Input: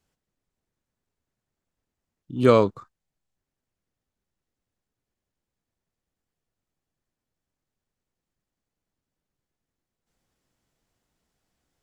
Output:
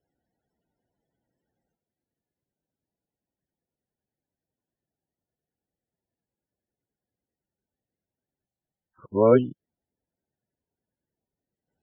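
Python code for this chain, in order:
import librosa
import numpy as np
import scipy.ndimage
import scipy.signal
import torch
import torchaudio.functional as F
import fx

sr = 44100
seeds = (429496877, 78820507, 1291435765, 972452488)

y = np.flip(x).copy()
y = fx.notch_comb(y, sr, f0_hz=1200.0)
y = fx.spec_topn(y, sr, count=32)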